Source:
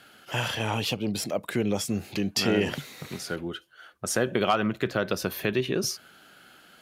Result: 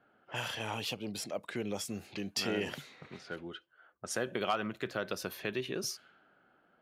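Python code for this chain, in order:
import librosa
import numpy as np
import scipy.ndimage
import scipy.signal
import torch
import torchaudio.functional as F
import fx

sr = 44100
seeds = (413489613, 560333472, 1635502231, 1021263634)

y = fx.env_lowpass(x, sr, base_hz=880.0, full_db=-25.5)
y = fx.low_shelf(y, sr, hz=290.0, db=-6.5)
y = y * 10.0 ** (-7.5 / 20.0)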